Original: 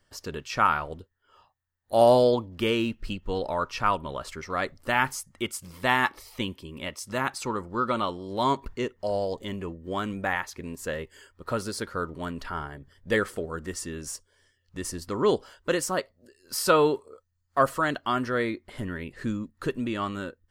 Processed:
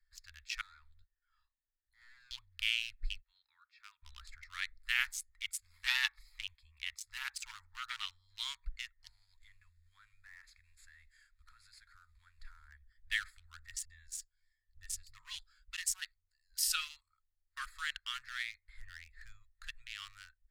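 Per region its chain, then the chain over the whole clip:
0:00.61–0:02.31: gain into a clipping stage and back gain 25.5 dB + downward compressor 10 to 1, threshold −39 dBFS + volume swells 151 ms
0:03.21–0:04.02: low-pass filter 2,800 Hz + first difference
0:05.08–0:08.06: parametric band 840 Hz +11 dB 0.49 octaves + saturating transformer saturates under 1,600 Hz
0:09.08–0:12.68: variable-slope delta modulation 64 kbit/s + downward compressor 3 to 1, threshold −40 dBFS + high-shelf EQ 9,800 Hz +3.5 dB
0:13.85–0:17.01: all-pass dispersion highs, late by 49 ms, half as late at 310 Hz + phaser whose notches keep moving one way falling 1.6 Hz
whole clip: adaptive Wiener filter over 15 samples; inverse Chebyshev band-stop filter 170–610 Hz, stop band 70 dB

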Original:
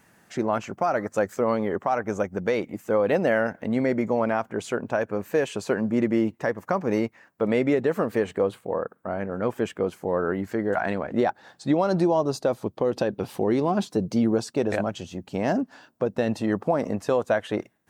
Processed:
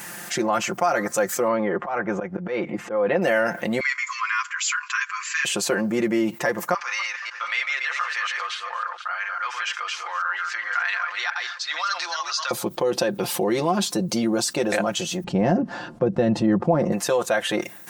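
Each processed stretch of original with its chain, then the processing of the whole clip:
0:01.48–0:03.22: low-pass filter 2,100 Hz + volume swells 157 ms
0:03.80–0:05.45: linear-phase brick-wall band-pass 1,000–7,700 Hz + comb filter 6.1 ms, depth 84%
0:06.74–0:12.51: delay that plays each chunk backwards 139 ms, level −5.5 dB + Chebyshev band-pass filter 1,200–5,800 Hz, order 3 + single-tap delay 482 ms −21 dB
0:15.24–0:16.92: low-pass filter 8,100 Hz + spectral tilt −4.5 dB per octave
whole clip: spectral tilt +2.5 dB per octave; comb filter 5.7 ms, depth 73%; envelope flattener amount 50%; level −3 dB

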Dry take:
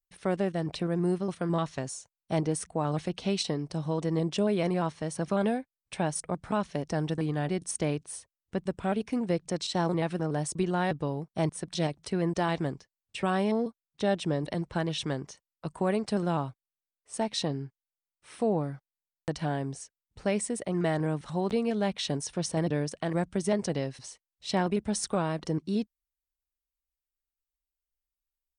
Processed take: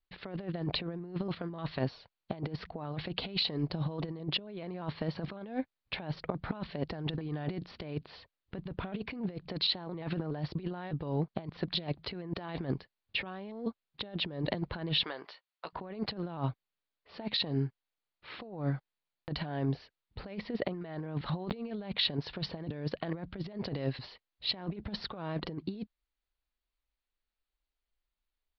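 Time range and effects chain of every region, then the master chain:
0:15.03–0:15.73: high-pass filter 720 Hz + downward compressor, threshold −41 dBFS + double-tracking delay 17 ms −13 dB
whole clip: de-essing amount 60%; Butterworth low-pass 4,700 Hz 96 dB per octave; compressor whose output falls as the input rises −34 dBFS, ratio −0.5

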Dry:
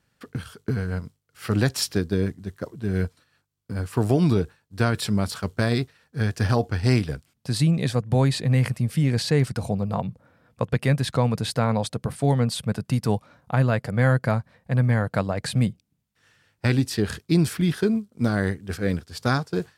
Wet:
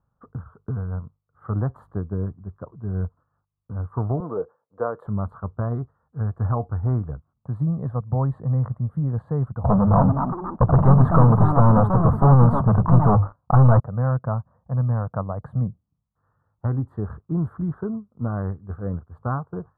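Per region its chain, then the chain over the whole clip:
0:04.20–0:05.07: high-pass filter 350 Hz + parametric band 500 Hz +14.5 dB 0.41 octaves
0:09.64–0:13.80: mains-hum notches 50/100/150 Hz + leveller curve on the samples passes 5 + delay with pitch and tempo change per echo 325 ms, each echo +5 semitones, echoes 2, each echo −6 dB
whole clip: elliptic low-pass filter 1,200 Hz, stop band 50 dB; parametric band 340 Hz −14 dB 2.4 octaves; level +5.5 dB

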